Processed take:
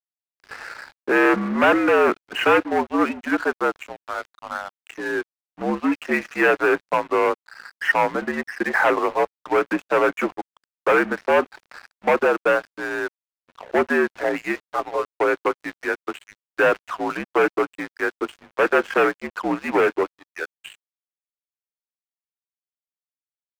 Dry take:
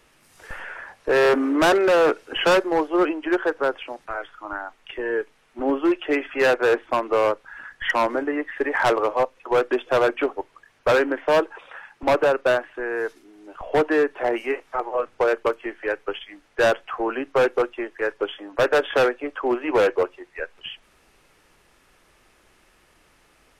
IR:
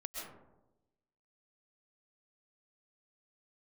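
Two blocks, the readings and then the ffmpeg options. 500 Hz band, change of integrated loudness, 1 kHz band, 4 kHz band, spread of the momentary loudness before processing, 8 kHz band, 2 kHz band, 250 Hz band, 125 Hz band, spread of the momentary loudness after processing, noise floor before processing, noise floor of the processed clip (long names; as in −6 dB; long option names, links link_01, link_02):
−1.0 dB, +0.5 dB, +2.0 dB, −3.5 dB, 15 LU, can't be measured, +3.5 dB, +1.5 dB, 0.0 dB, 14 LU, −60 dBFS, below −85 dBFS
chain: -af "highpass=frequency=190:width_type=q:width=0.5412,highpass=frequency=190:width_type=q:width=1.307,lowpass=frequency=2700:width_type=q:width=0.5176,lowpass=frequency=2700:width_type=q:width=0.7071,lowpass=frequency=2700:width_type=q:width=1.932,afreqshift=-66,tiltshelf=frequency=800:gain=-4,aeval=exprs='sgn(val(0))*max(abs(val(0))-0.0119,0)':channel_layout=same,volume=2.5dB"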